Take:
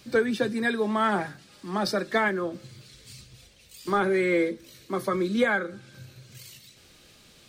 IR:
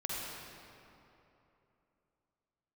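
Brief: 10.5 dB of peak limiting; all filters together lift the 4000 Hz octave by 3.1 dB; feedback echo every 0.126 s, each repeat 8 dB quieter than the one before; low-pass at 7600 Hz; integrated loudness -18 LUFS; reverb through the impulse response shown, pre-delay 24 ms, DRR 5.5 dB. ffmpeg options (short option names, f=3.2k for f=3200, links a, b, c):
-filter_complex "[0:a]lowpass=7.6k,equalizer=f=4k:t=o:g=4,alimiter=limit=-22.5dB:level=0:latency=1,aecho=1:1:126|252|378|504|630:0.398|0.159|0.0637|0.0255|0.0102,asplit=2[a][b];[1:a]atrim=start_sample=2205,adelay=24[c];[b][c]afir=irnorm=-1:irlink=0,volume=-9dB[d];[a][d]amix=inputs=2:normalize=0,volume=12.5dB"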